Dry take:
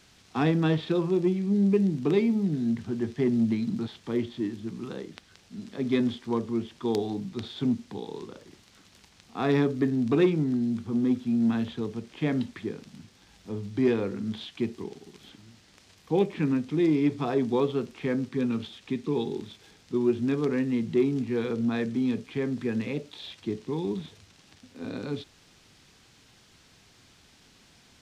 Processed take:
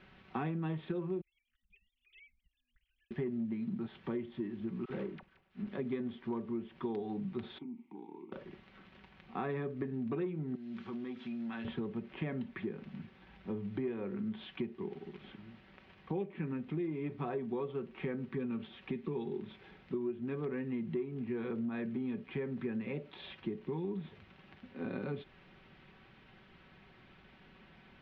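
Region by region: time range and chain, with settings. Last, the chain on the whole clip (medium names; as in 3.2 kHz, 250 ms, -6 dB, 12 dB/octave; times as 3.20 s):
1.21–3.11 s: formants replaced by sine waves + inverse Chebyshev band-stop 210–970 Hz, stop band 70 dB
4.85–5.67 s: dead-time distortion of 0.21 ms + phase dispersion lows, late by 45 ms, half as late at 780 Hz + three bands expanded up and down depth 70%
7.58–8.32 s: vowel filter u + compression 5:1, threshold -40 dBFS
10.55–11.65 s: tilt EQ +4 dB/octave + compression 4:1, threshold -39 dBFS
whole clip: low-pass 2.7 kHz 24 dB/octave; comb 5.3 ms, depth 48%; compression 6:1, threshold -35 dBFS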